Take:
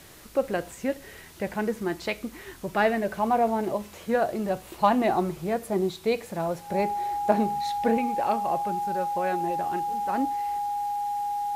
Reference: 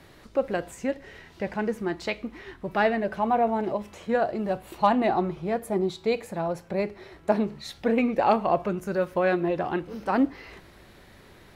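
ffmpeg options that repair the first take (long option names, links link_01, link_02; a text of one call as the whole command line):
ffmpeg -i in.wav -af "bandreject=frequency=820:width=30,afwtdn=0.0028,asetnsamples=nb_out_samples=441:pad=0,asendcmd='7.97 volume volume 6.5dB',volume=0dB" out.wav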